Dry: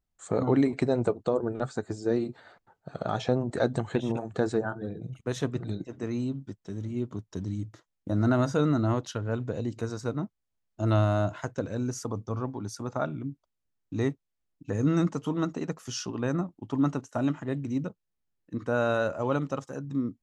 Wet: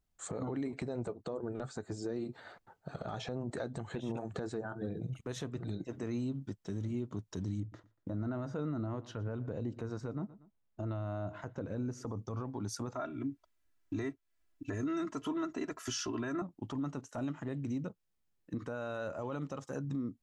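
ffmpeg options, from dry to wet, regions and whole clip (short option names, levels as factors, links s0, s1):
-filter_complex "[0:a]asettb=1/sr,asplit=3[s0][s1][s2];[s0]atrim=end=7.604[s3];[s1]atrim=start=7.6:end=12.2,asetpts=PTS-STARTPTS,afade=t=in:d=0.004:c=qsin,afade=t=out:st=4.596:d=0.004:c=qsin,lowpass=f=1600:p=1,aecho=1:1:118|236:0.0668|0.0234,atrim=end_sample=202860[s4];[s2]atrim=start=12.196[s5];[s3][s4]acrossfade=d=0.004:c1=hsin:c2=qsin[s6];[s6][s5]acrossfade=d=0.004:c1=qsin:c2=hsin,asettb=1/sr,asplit=3[s7][s8][s9];[s7]atrim=end=12.954[s10];[s8]atrim=start=12.95:end=16.42,asetpts=PTS-STARTPTS,afade=t=in:d=0.004:c=qsin,afade=t=out:st=3.466:d=0.004:c=qsin,equalizer=f=1700:t=o:w=1.1:g=6,aecho=1:1:3:0.88,atrim=end_sample=153027[s11];[s9]atrim=start=16.416[s12];[s10][s11]acrossfade=d=0.004:c1=hsin:c2=qsin[s13];[s13][s12]acrossfade=d=0.004:c1=qsin:c2=hsin,acompressor=threshold=0.0178:ratio=4,alimiter=level_in=2:limit=0.0631:level=0:latency=1:release=14,volume=0.501,volume=1.19"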